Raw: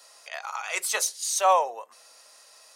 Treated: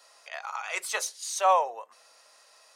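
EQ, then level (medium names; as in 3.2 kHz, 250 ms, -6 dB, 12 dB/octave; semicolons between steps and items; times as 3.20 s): bass shelf 400 Hz -6 dB; treble shelf 3.7 kHz -7.5 dB; peaking EQ 14 kHz -2.5 dB 0.77 oct; 0.0 dB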